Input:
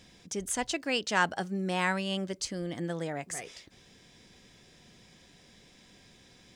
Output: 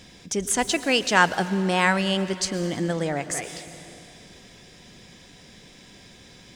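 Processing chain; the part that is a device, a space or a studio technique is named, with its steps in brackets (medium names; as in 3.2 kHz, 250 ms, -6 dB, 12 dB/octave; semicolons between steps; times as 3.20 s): saturated reverb return (on a send at -9 dB: reverberation RT60 2.5 s, pre-delay 104 ms + saturation -32.5 dBFS, distortion -9 dB); on the sum: trim +8.5 dB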